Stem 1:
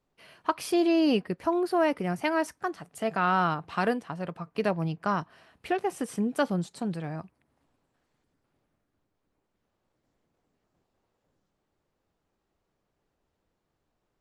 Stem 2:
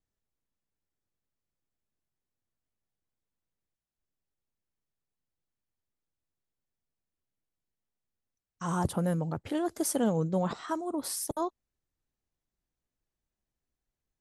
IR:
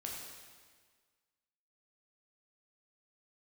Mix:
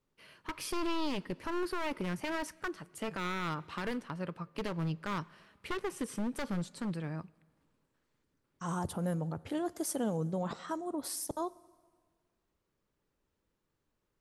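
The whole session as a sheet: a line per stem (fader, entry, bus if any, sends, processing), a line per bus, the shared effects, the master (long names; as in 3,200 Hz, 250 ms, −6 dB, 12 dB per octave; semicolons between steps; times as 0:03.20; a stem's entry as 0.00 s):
−3.5 dB, 0.00 s, send −21.5 dB, wavefolder on the positive side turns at −27 dBFS; parametric band 720 Hz −11 dB 0.29 octaves
−4.5 dB, 0.00 s, send −18 dB, no processing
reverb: on, RT60 1.6 s, pre-delay 7 ms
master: brickwall limiter −25.5 dBFS, peak gain reduction 8 dB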